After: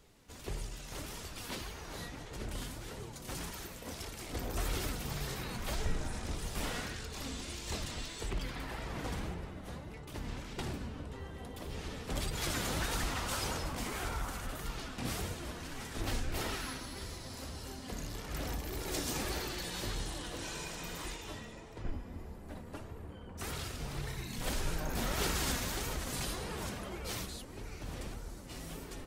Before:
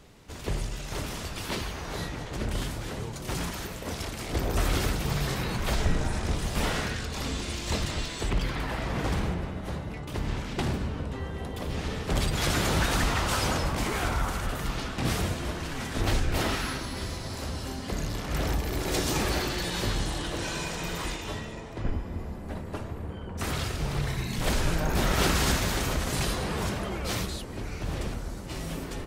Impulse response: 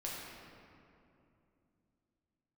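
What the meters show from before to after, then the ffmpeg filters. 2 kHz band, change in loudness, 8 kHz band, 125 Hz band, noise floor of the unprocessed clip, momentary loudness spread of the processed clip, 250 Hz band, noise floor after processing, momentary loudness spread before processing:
−9.0 dB, −9.0 dB, −6.0 dB, −11.0 dB, −38 dBFS, 10 LU, −10.0 dB, −48 dBFS, 9 LU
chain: -af "highshelf=frequency=6200:gain=6.5,flanger=delay=2.1:depth=2.1:regen=64:speed=1.7:shape=sinusoidal,volume=-5.5dB"

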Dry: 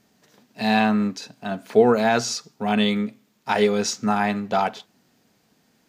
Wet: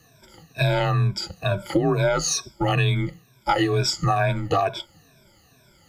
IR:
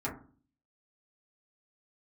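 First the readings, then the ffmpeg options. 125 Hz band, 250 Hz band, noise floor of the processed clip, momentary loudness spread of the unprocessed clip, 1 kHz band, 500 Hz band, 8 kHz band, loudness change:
+10.5 dB, −5.5 dB, −57 dBFS, 13 LU, −1.5 dB, −3.0 dB, +3.0 dB, −1.0 dB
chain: -af "afftfilt=real='re*pow(10,21/40*sin(2*PI*(1.7*log(max(b,1)*sr/1024/100)/log(2)-(-2.2)*(pts-256)/sr)))':imag='im*pow(10,21/40*sin(2*PI*(1.7*log(max(b,1)*sr/1024/100)/log(2)-(-2.2)*(pts-256)/sr)))':win_size=1024:overlap=0.75,afreqshift=-85,acompressor=threshold=-21dB:ratio=6,volume=3dB"

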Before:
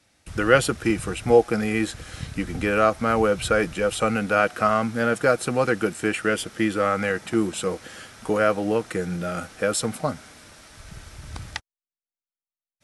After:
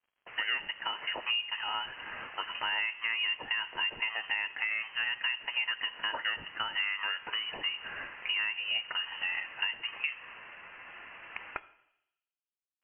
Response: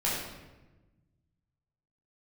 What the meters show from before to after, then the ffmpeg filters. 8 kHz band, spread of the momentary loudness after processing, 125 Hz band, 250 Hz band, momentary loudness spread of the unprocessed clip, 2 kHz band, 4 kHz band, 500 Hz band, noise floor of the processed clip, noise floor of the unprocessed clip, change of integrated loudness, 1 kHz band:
below −40 dB, 13 LU, below −30 dB, −33.5 dB, 16 LU, −4.0 dB, +4.0 dB, −30.5 dB, below −85 dBFS, below −85 dBFS, −9.5 dB, −14.0 dB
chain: -filter_complex "[0:a]highpass=frequency=440:width=0.5412,highpass=frequency=440:width=1.3066,asplit=2[link_01][link_02];[link_02]alimiter=limit=-14dB:level=0:latency=1,volume=-0.5dB[link_03];[link_01][link_03]amix=inputs=2:normalize=0,acompressor=threshold=-27dB:ratio=6,acrusher=bits=7:mix=0:aa=0.5,asplit=2[link_04][link_05];[1:a]atrim=start_sample=2205,asetrate=52920,aresample=44100[link_06];[link_05][link_06]afir=irnorm=-1:irlink=0,volume=-20.5dB[link_07];[link_04][link_07]amix=inputs=2:normalize=0,lowpass=frequency=2800:width_type=q:width=0.5098,lowpass=frequency=2800:width_type=q:width=0.6013,lowpass=frequency=2800:width_type=q:width=0.9,lowpass=frequency=2800:width_type=q:width=2.563,afreqshift=-3300,volume=-4dB"

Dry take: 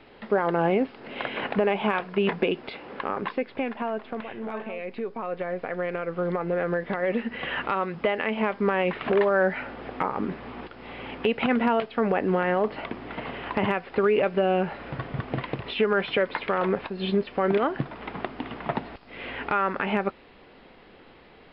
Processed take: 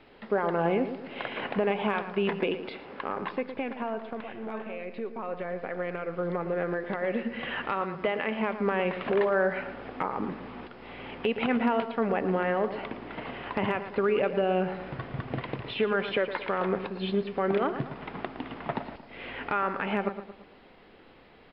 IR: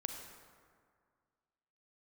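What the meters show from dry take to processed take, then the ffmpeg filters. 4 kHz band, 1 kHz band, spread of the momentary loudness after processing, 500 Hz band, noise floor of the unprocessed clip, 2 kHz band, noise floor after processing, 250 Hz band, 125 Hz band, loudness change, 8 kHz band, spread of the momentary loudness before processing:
−3.5 dB, −3.5 dB, 12 LU, −3.0 dB, −52 dBFS, −3.5 dB, −54 dBFS, −3.0 dB, −3.5 dB, −3.5 dB, can't be measured, 12 LU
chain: -filter_complex "[0:a]asplit=2[link_01][link_02];[link_02]adelay=113,lowpass=frequency=2200:poles=1,volume=-10dB,asplit=2[link_03][link_04];[link_04]adelay=113,lowpass=frequency=2200:poles=1,volume=0.47,asplit=2[link_05][link_06];[link_06]adelay=113,lowpass=frequency=2200:poles=1,volume=0.47,asplit=2[link_07][link_08];[link_08]adelay=113,lowpass=frequency=2200:poles=1,volume=0.47,asplit=2[link_09][link_10];[link_10]adelay=113,lowpass=frequency=2200:poles=1,volume=0.47[link_11];[link_01][link_03][link_05][link_07][link_09][link_11]amix=inputs=6:normalize=0,asplit=2[link_12][link_13];[1:a]atrim=start_sample=2205,afade=type=out:start_time=0.15:duration=0.01,atrim=end_sample=7056[link_14];[link_13][link_14]afir=irnorm=-1:irlink=0,volume=-11dB[link_15];[link_12][link_15]amix=inputs=2:normalize=0,volume=-5.5dB"

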